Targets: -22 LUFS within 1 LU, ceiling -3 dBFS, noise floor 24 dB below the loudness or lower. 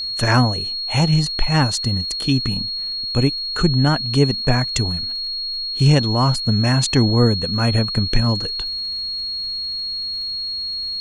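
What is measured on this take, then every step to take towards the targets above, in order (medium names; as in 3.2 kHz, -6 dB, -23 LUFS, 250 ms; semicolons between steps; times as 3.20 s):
tick rate 38 per s; steady tone 4.3 kHz; tone level -23 dBFS; loudness -19.0 LUFS; peak level -2.0 dBFS; loudness target -22.0 LUFS
-> de-click; band-stop 4.3 kHz, Q 30; trim -3 dB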